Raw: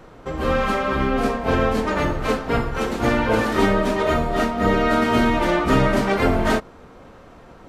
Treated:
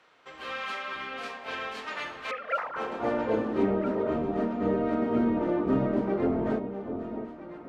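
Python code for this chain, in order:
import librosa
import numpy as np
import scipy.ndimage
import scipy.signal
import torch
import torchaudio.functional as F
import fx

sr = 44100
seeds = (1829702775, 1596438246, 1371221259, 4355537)

y = fx.sine_speech(x, sr, at=(2.31, 2.76))
y = fx.filter_sweep_bandpass(y, sr, from_hz=2900.0, to_hz=310.0, start_s=2.2, end_s=3.46, q=1.0)
y = fx.echo_alternate(y, sr, ms=658, hz=900.0, feedback_pct=66, wet_db=-8.5)
y = F.gain(torch.from_numpy(y), -5.0).numpy()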